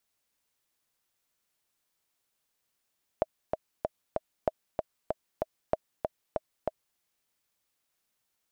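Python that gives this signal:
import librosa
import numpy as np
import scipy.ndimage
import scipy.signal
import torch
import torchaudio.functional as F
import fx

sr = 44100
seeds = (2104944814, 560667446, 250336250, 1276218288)

y = fx.click_track(sr, bpm=191, beats=4, bars=3, hz=633.0, accent_db=4.0, level_db=-11.5)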